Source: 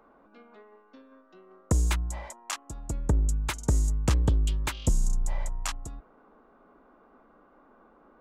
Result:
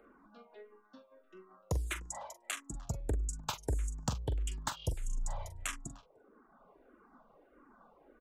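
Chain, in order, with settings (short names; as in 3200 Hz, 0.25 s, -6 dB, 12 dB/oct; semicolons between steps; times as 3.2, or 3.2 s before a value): reverb removal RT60 1 s; compressor 6:1, threshold -30 dBFS, peak gain reduction 10 dB; doubler 43 ms -10.5 dB; speakerphone echo 0.3 s, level -20 dB; endless phaser -1.6 Hz; gain +1 dB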